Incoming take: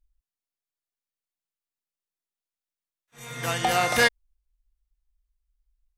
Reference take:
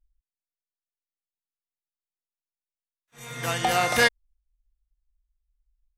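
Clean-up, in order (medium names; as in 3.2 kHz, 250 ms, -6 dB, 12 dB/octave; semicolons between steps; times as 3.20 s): clip repair -10 dBFS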